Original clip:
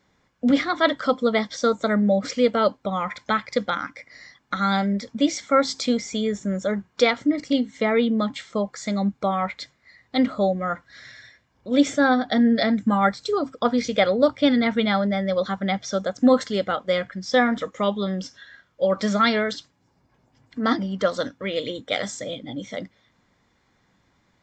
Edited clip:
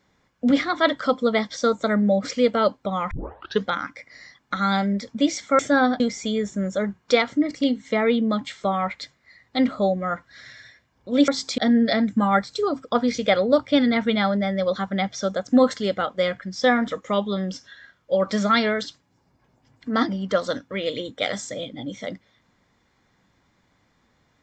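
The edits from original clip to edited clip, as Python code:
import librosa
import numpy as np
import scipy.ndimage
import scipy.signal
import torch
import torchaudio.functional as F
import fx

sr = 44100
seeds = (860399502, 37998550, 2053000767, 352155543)

y = fx.edit(x, sr, fx.tape_start(start_s=3.11, length_s=0.53),
    fx.swap(start_s=5.59, length_s=0.3, other_s=11.87, other_length_s=0.41),
    fx.cut(start_s=8.53, length_s=0.7), tone=tone)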